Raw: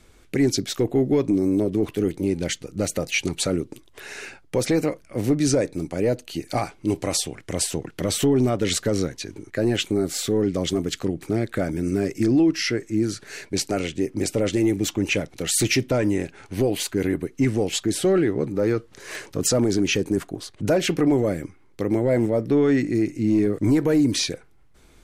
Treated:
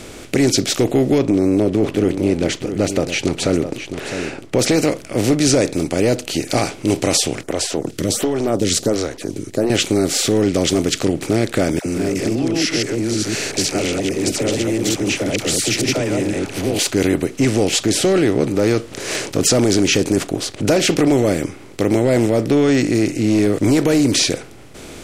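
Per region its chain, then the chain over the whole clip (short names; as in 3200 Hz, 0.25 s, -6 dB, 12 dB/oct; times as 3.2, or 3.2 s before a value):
1.18–4.59 LPF 1700 Hz 6 dB/oct + echo 0.661 s -15 dB
7.43–9.7 bell 2500 Hz -8 dB 0.99 oct + photocell phaser 1.4 Hz
11.79–16.79 reverse delay 0.115 s, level -1 dB + compressor 2.5:1, threshold -28 dBFS + dispersion lows, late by 70 ms, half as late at 620 Hz
whole clip: per-bin compression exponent 0.6; dynamic EQ 5300 Hz, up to +4 dB, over -35 dBFS, Q 1; gain +2 dB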